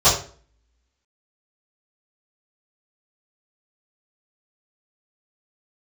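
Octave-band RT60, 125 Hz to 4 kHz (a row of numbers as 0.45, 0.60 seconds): 0.45, 0.50, 0.45, 0.40, 0.40, 0.35 seconds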